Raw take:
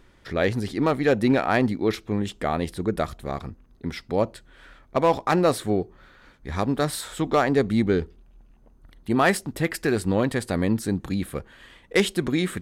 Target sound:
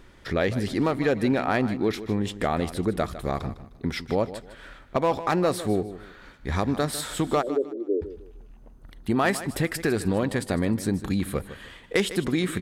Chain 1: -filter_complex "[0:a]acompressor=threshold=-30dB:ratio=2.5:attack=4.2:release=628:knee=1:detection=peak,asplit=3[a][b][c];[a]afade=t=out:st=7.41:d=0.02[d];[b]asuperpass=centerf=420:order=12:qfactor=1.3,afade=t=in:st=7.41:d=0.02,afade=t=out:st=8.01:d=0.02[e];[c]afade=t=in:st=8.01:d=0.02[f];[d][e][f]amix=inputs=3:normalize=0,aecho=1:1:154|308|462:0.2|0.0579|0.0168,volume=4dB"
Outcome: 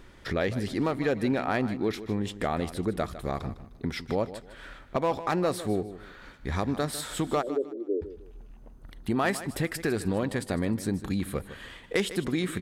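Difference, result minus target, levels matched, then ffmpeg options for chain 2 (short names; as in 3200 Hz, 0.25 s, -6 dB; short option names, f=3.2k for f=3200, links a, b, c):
compressor: peak gain reduction +3.5 dB
-filter_complex "[0:a]acompressor=threshold=-24dB:ratio=2.5:attack=4.2:release=628:knee=1:detection=peak,asplit=3[a][b][c];[a]afade=t=out:st=7.41:d=0.02[d];[b]asuperpass=centerf=420:order=12:qfactor=1.3,afade=t=in:st=7.41:d=0.02,afade=t=out:st=8.01:d=0.02[e];[c]afade=t=in:st=8.01:d=0.02[f];[d][e][f]amix=inputs=3:normalize=0,aecho=1:1:154|308|462:0.2|0.0579|0.0168,volume=4dB"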